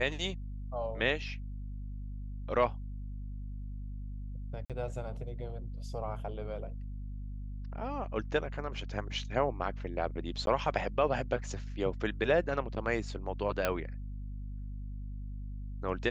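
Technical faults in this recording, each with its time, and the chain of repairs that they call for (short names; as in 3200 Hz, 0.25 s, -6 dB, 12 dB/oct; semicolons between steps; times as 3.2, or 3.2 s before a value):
hum 50 Hz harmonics 5 -40 dBFS
4.65–4.7 gap 47 ms
10.46–10.47 gap 12 ms
13.65 pop -14 dBFS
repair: de-click; de-hum 50 Hz, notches 5; interpolate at 4.65, 47 ms; interpolate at 10.46, 12 ms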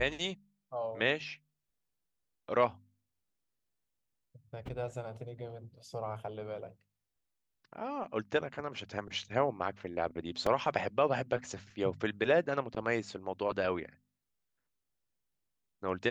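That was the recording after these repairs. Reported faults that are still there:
none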